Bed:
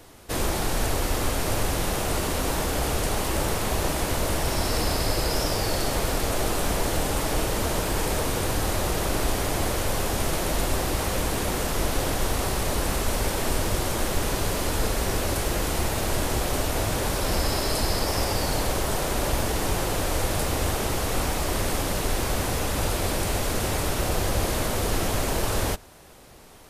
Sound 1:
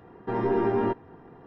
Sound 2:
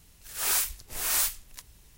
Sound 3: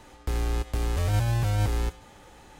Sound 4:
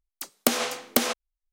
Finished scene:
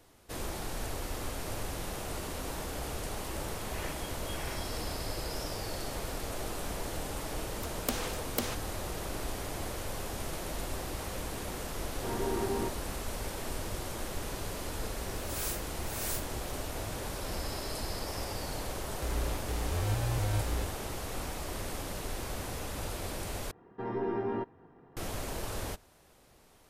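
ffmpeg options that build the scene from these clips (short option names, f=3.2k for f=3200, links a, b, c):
-filter_complex "[2:a]asplit=2[a][b];[1:a]asplit=2[c][d];[0:a]volume=-12dB[e];[a]lowpass=f=2.8k:t=q:w=0.5098,lowpass=f=2.8k:t=q:w=0.6013,lowpass=f=2.8k:t=q:w=0.9,lowpass=f=2.8k:t=q:w=2.563,afreqshift=-3300[f];[e]asplit=2[g][h];[g]atrim=end=23.514[i];[d]atrim=end=1.46,asetpts=PTS-STARTPTS,volume=-8.5dB[j];[h]atrim=start=24.966[k];[f]atrim=end=1.97,asetpts=PTS-STARTPTS,volume=-10dB,afade=t=in:d=0.004:c=hsin,afade=t=out:st=1.966:d=0.004:c=hsin,adelay=146853S[l];[4:a]atrim=end=1.52,asetpts=PTS-STARTPTS,volume=-11.5dB,afade=t=in:d=0.004:c=hsin,afade=t=out:st=1.516:d=0.004:c=hsin,adelay=7420[m];[c]atrim=end=1.46,asetpts=PTS-STARTPTS,volume=-9dB,afade=t=in:d=0.004:c=hsin,afade=t=out:st=1.456:d=0.004:c=hsin,adelay=11760[n];[b]atrim=end=1.97,asetpts=PTS-STARTPTS,volume=-11.5dB,afade=t=in:d=0.004:c=hsin,afade=t=out:st=1.966:d=0.004:c=hsin,adelay=14910[o];[3:a]atrim=end=2.59,asetpts=PTS-STARTPTS,volume=-7.5dB,afade=t=in:d=0.004:c=hsin,afade=t=out:st=2.586:d=0.004:c=hsin,adelay=18750[p];[i][j]acrossfade=d=0.004:c1=hsin:c2=hsin[q];[q][k]acrossfade=d=0.004:c1=hsin:c2=hsin[r];[r][l][m][n][o][p]amix=inputs=6:normalize=0"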